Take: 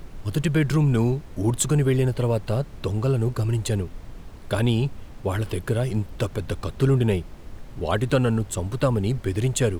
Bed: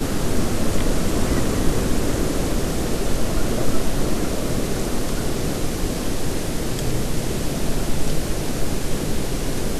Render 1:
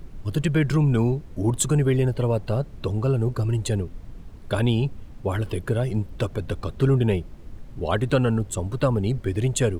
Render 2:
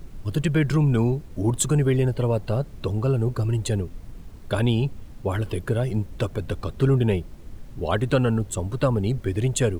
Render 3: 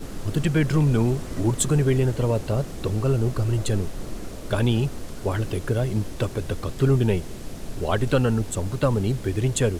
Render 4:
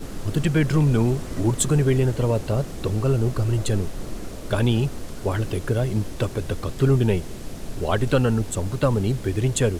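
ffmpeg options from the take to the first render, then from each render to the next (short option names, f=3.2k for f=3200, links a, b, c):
-af "afftdn=nr=7:nf=-41"
-af "acrusher=bits=9:mix=0:aa=0.000001"
-filter_complex "[1:a]volume=-14dB[a];[0:a][a]amix=inputs=2:normalize=0"
-af "volume=1dB"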